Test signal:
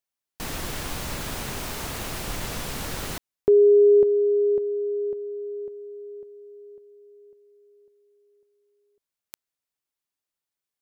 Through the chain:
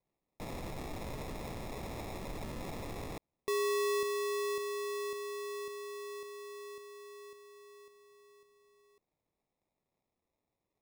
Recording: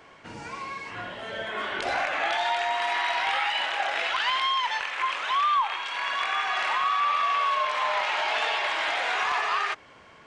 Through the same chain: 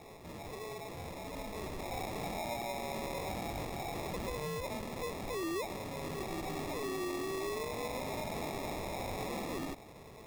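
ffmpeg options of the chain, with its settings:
-af "acrusher=samples=29:mix=1:aa=0.000001,acompressor=threshold=-48dB:ratio=2:attack=0.44:release=24:knee=6:detection=rms,volume=1dB"

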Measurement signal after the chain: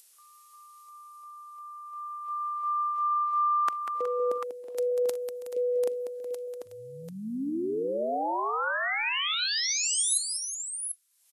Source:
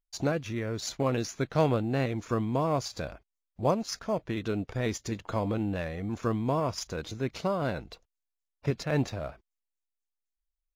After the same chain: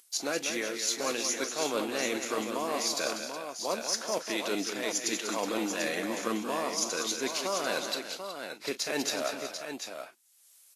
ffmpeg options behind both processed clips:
-af "highpass=f=260:w=0.5412,highpass=f=260:w=1.3066,crystalizer=i=8:c=0,areverse,acompressor=threshold=-34dB:ratio=6,areverse,equalizer=f=4.6k:w=0.53:g=-2,aecho=1:1:42|193|326|369|742:0.133|0.398|0.112|0.251|0.422,acompressor=mode=upward:threshold=-46dB:ratio=2.5,volume=5.5dB" -ar 32000 -c:a libvorbis -b:a 32k

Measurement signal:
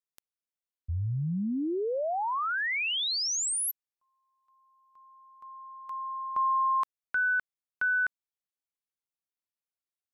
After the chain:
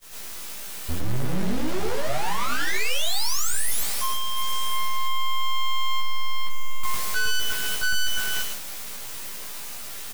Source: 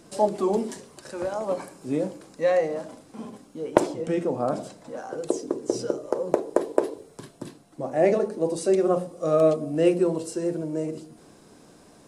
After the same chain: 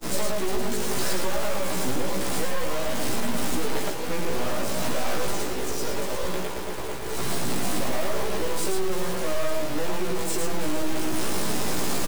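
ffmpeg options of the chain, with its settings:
-filter_complex "[0:a]aeval=exprs='val(0)+0.5*0.0398*sgn(val(0))':c=same,bandreject=f=64.52:t=h:w=4,bandreject=f=129.04:t=h:w=4,bandreject=f=193.56:t=h:w=4,bandreject=f=258.08:t=h:w=4,bandreject=f=322.6:t=h:w=4,bandreject=f=387.12:t=h:w=4,bandreject=f=451.64:t=h:w=4,bandreject=f=516.16:t=h:w=4,bandreject=f=580.68:t=h:w=4,bandreject=f=645.2:t=h:w=4,bandreject=f=709.72:t=h:w=4,bandreject=f=774.24:t=h:w=4,bandreject=f=838.76:t=h:w=4,bandreject=f=903.28:t=h:w=4,bandreject=f=967.8:t=h:w=4,bandreject=f=1.03232k:t=h:w=4,bandreject=f=1.09684k:t=h:w=4,bandreject=f=1.16136k:t=h:w=4,bandreject=f=1.22588k:t=h:w=4,bandreject=f=1.2904k:t=h:w=4,bandreject=f=1.35492k:t=h:w=4,bandreject=f=1.41944k:t=h:w=4,bandreject=f=1.48396k:t=h:w=4,bandreject=f=1.54848k:t=h:w=4,bandreject=f=1.613k:t=h:w=4,bandreject=f=1.67752k:t=h:w=4,acompressor=threshold=-26dB:ratio=12:attack=6.2:release=820:knee=1:detection=peak,asplit=2[a][b];[b]aecho=0:1:351|702|1053:0.2|0.0638|0.0204[c];[a][c]amix=inputs=2:normalize=0,acrusher=bits=4:dc=4:mix=0:aa=0.000001,asplit=2[d][e];[e]aecho=0:1:106|111:0.422|0.501[f];[d][f]amix=inputs=2:normalize=0,asoftclip=type=hard:threshold=-29dB,asplit=2[g][h];[h]adelay=16,volume=-2dB[i];[g][i]amix=inputs=2:normalize=0,acrossover=split=170|1900[j][k][l];[k]acompressor=threshold=-35dB:ratio=6:knee=2.83:detection=peak[m];[j][m][l]amix=inputs=3:normalize=0,agate=range=-33dB:threshold=-30dB:ratio=3:release=395:detection=peak,volume=8.5dB"

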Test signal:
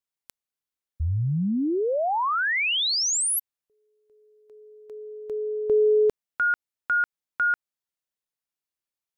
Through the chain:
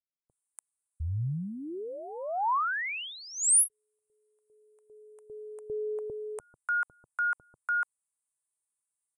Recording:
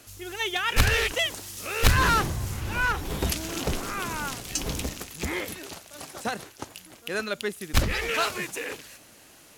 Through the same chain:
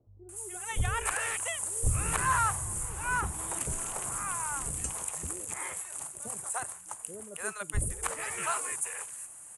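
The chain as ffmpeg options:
-filter_complex "[0:a]acrossover=split=3600[a][b];[b]acompressor=threshold=-35dB:ratio=4:attack=1:release=60[c];[a][c]amix=inputs=2:normalize=0,equalizer=f=125:t=o:w=1:g=4,equalizer=f=250:t=o:w=1:g=-7,equalizer=f=1k:t=o:w=1:g=8,equalizer=f=4k:t=o:w=1:g=-10,equalizer=f=8k:t=o:w=1:g=5,aresample=22050,aresample=44100,acrossover=split=510[d][e];[e]adelay=290[f];[d][f]amix=inputs=2:normalize=0,aexciter=amount=14.9:drive=3.6:freq=7.9k,volume=-8.5dB"

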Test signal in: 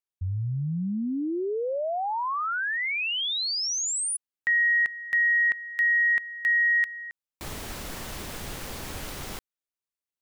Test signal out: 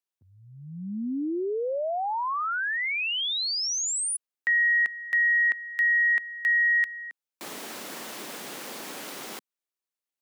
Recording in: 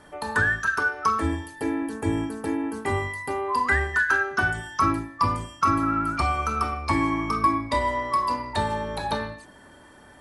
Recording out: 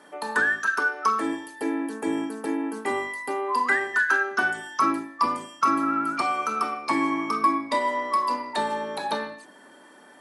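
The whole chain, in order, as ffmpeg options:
-af "highpass=f=220:w=0.5412,highpass=f=220:w=1.3066"

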